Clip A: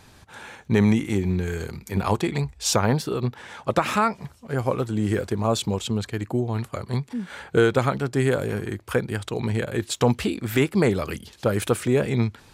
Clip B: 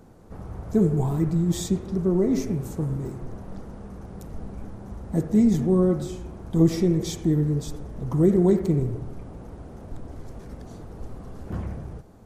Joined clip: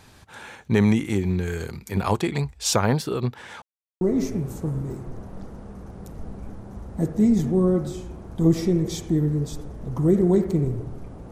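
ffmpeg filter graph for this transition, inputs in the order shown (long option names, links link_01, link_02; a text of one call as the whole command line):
ffmpeg -i cue0.wav -i cue1.wav -filter_complex "[0:a]apad=whole_dur=11.31,atrim=end=11.31,asplit=2[link_01][link_02];[link_01]atrim=end=3.62,asetpts=PTS-STARTPTS,afade=type=out:start_time=3.616:duration=0.004:curve=hsin[link_03];[link_02]atrim=start=3.62:end=4.01,asetpts=PTS-STARTPTS,volume=0[link_04];[1:a]atrim=start=2.16:end=9.46,asetpts=PTS-STARTPTS,afade=type=in:duration=0.004:curve=hsin[link_05];[link_03][link_04][link_05]concat=n=3:v=0:a=1" out.wav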